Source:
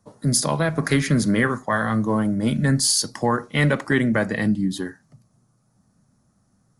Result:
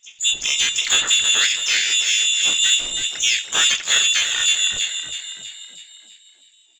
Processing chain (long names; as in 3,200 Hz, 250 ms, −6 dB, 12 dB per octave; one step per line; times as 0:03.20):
bad sample-rate conversion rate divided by 3×, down filtered, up hold
voice inversion scrambler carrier 3,700 Hz
in parallel at −4 dB: soft clipping −18.5 dBFS, distortion −12 dB
on the sum: echo with shifted repeats 324 ms, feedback 52%, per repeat +52 Hz, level −8 dB
pitch-shifted copies added −4 semitones −4 dB, +12 semitones −2 dB
level −4.5 dB